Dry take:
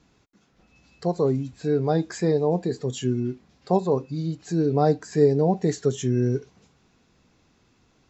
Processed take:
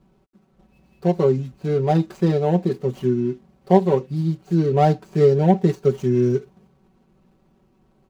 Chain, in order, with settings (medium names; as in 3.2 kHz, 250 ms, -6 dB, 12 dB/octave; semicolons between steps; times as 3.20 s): median filter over 25 samples; comb 5.3 ms, depth 80%; trim +2.5 dB